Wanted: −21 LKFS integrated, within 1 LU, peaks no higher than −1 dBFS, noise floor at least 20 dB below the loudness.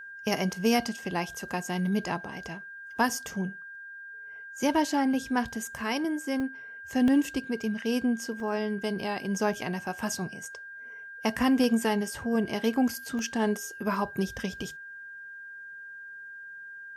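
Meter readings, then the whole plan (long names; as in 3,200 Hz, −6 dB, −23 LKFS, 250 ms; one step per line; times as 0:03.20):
number of dropouts 6; longest dropout 1.2 ms; interfering tone 1,600 Hz; level of the tone −41 dBFS; integrated loudness −29.5 LKFS; sample peak −11.5 dBFS; target loudness −21.0 LKFS
→ repair the gap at 0:05.78/0:06.40/0:07.08/0:08.40/0:11.64/0:13.19, 1.2 ms
notch filter 1,600 Hz, Q 30
level +8.5 dB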